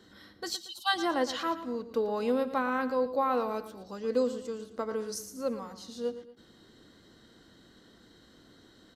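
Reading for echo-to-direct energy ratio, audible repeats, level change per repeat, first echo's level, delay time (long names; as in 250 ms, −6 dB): −12.5 dB, 2, −7.5 dB, −13.0 dB, 115 ms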